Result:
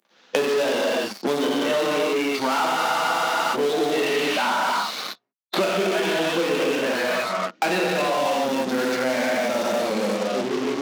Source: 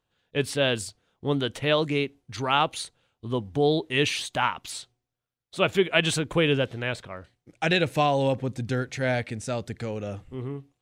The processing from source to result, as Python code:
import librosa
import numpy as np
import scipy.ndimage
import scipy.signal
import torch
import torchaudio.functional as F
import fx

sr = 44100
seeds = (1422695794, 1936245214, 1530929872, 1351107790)

p1 = fx.cvsd(x, sr, bps=32000)
p2 = fx.noise_reduce_blind(p1, sr, reduce_db=9)
p3 = fx.rev_gated(p2, sr, seeds[0], gate_ms=350, shape='flat', drr_db=-6.5)
p4 = fx.fuzz(p3, sr, gain_db=37.0, gate_db=-42.0)
p5 = p3 + (p4 * librosa.db_to_amplitude(-5.0))
p6 = scipy.signal.sosfilt(scipy.signal.cheby1(4, 1.0, 200.0, 'highpass', fs=sr, output='sos'), p5)
p7 = fx.spec_freeze(p6, sr, seeds[1], at_s=2.78, hold_s=0.76)
p8 = fx.band_squash(p7, sr, depth_pct=100)
y = p8 * librosa.db_to_amplitude(-8.0)